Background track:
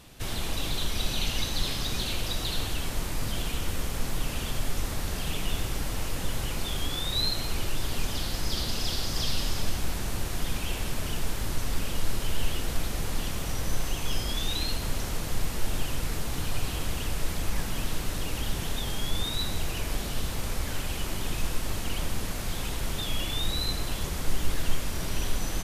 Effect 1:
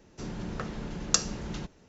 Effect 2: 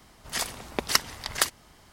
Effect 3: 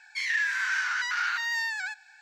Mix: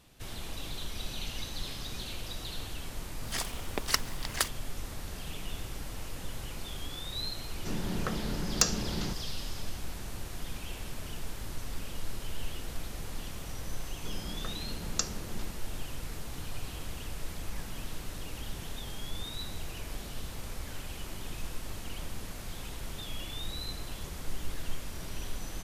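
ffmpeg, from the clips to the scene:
ffmpeg -i bed.wav -i cue0.wav -i cue1.wav -filter_complex "[1:a]asplit=2[link_01][link_02];[0:a]volume=-9dB[link_03];[2:a]acrusher=bits=6:mix=0:aa=0.5[link_04];[link_01]aeval=exprs='0.841*sin(PI/2*2.51*val(0)/0.841)':channel_layout=same[link_05];[link_04]atrim=end=1.92,asetpts=PTS-STARTPTS,volume=-5.5dB,afade=type=in:duration=0.004:curve=hsin,afade=type=out:start_time=1.916:duration=0.004:curve=hsin,adelay=2990[link_06];[link_05]atrim=end=1.88,asetpts=PTS-STARTPTS,volume=-10dB,afade=type=in:duration=0.004:curve=hsin,afade=type=out:start_time=1.876:duration=0.004:curve=hsin,adelay=7470[link_07];[link_02]atrim=end=1.88,asetpts=PTS-STARTPTS,volume=-7dB,afade=type=in:duration=0.004:curve=hsin,afade=type=out:start_time=1.876:duration=0.004:curve=hsin,adelay=13850[link_08];[link_03][link_06][link_07][link_08]amix=inputs=4:normalize=0" out.wav

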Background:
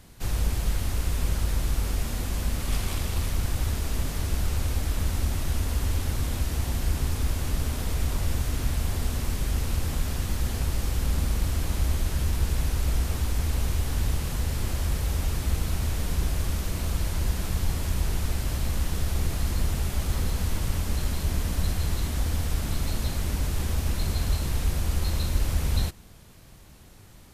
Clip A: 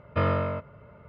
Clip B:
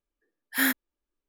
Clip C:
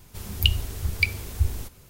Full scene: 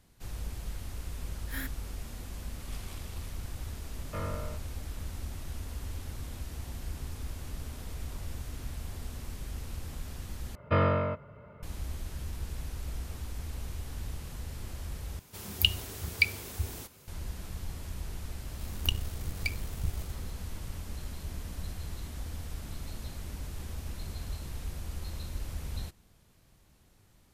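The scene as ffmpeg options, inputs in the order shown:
ffmpeg -i bed.wav -i cue0.wav -i cue1.wav -i cue2.wav -filter_complex "[1:a]asplit=2[link_01][link_02];[3:a]asplit=2[link_03][link_04];[0:a]volume=-12.5dB[link_05];[link_03]highpass=frequency=190:poles=1[link_06];[link_04]aeval=exprs='if(lt(val(0),0),0.251*val(0),val(0))':channel_layout=same[link_07];[link_05]asplit=3[link_08][link_09][link_10];[link_08]atrim=end=10.554[link_11];[link_02]atrim=end=1.08,asetpts=PTS-STARTPTS,volume=-0.5dB[link_12];[link_09]atrim=start=11.626:end=15.194[link_13];[link_06]atrim=end=1.89,asetpts=PTS-STARTPTS,volume=-2dB[link_14];[link_10]atrim=start=17.076[link_15];[2:a]atrim=end=1.28,asetpts=PTS-STARTPTS,volume=-15.5dB,afade=type=in:duration=0.004:curve=hsin,afade=type=out:start_time=1.276:duration=0.004:curve=hsin,adelay=950[link_16];[link_01]atrim=end=1.08,asetpts=PTS-STARTPTS,volume=-12.5dB,afade=type=in:duration=0.004:curve=hsin,afade=type=out:start_time=1.076:duration=0.004:curve=hsin,adelay=175077S[link_17];[link_07]atrim=end=1.89,asetpts=PTS-STARTPTS,volume=-7dB,afade=type=in:duration=0.004:curve=hsin,afade=type=out:start_time=1.886:duration=0.004:curve=hsin,adelay=18430[link_18];[link_11][link_12]acrossfade=duration=0.004:curve1=hsin:curve2=hsin[link_19];[link_19][link_13]acrossfade=duration=0.004:curve1=hsin:curve2=hsin[link_20];[link_20][link_14]acrossfade=duration=0.004:curve1=hsin:curve2=hsin[link_21];[link_21][link_15]acrossfade=duration=0.004:curve1=hsin:curve2=hsin[link_22];[link_22][link_16][link_17][link_18]amix=inputs=4:normalize=0" out.wav

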